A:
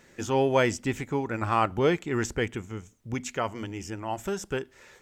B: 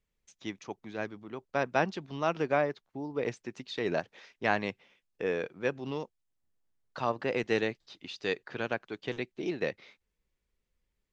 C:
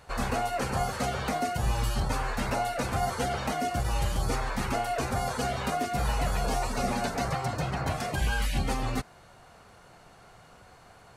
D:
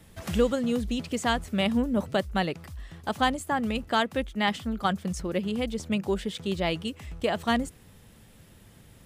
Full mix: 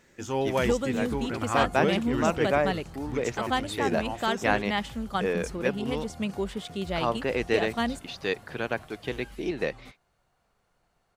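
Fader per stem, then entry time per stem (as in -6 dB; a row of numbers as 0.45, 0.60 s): -4.0, +3.0, -19.5, -3.0 dB; 0.00, 0.00, 0.90, 0.30 s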